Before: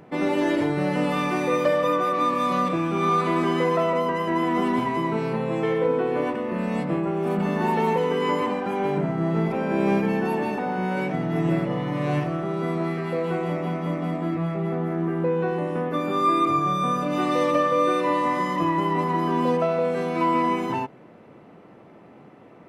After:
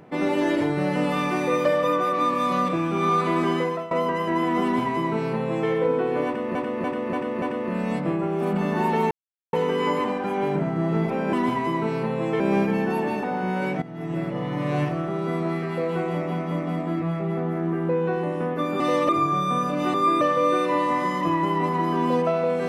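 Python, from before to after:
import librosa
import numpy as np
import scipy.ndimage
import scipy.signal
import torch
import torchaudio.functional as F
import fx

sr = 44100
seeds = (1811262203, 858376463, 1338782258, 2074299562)

y = fx.edit(x, sr, fx.fade_out_to(start_s=3.53, length_s=0.38, floor_db=-17.5),
    fx.duplicate(start_s=4.63, length_s=1.07, to_s=9.75),
    fx.repeat(start_s=6.26, length_s=0.29, count=5),
    fx.insert_silence(at_s=7.95, length_s=0.42),
    fx.fade_in_from(start_s=11.17, length_s=0.77, floor_db=-15.0),
    fx.swap(start_s=16.15, length_s=0.27, other_s=17.27, other_length_s=0.29), tone=tone)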